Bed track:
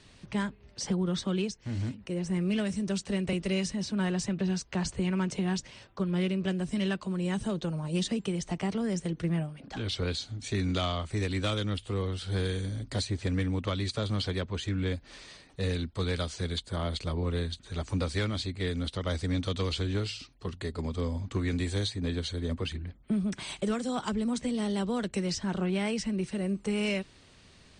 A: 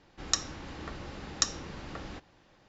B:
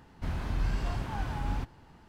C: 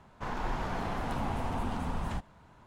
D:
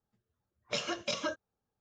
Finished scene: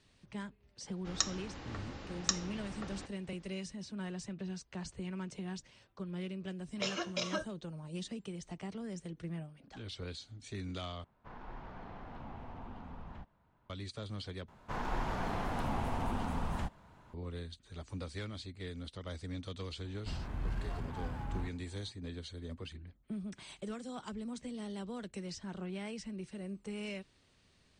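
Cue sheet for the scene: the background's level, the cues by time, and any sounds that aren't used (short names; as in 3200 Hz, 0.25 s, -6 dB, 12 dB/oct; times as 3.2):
bed track -12 dB
0.87 add A -4 dB
6.09 add D -2.5 dB
11.04 replace with C -13.5 dB + air absorption 200 m
14.48 replace with C -2 dB
19.84 add B -7 dB + Wiener smoothing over 9 samples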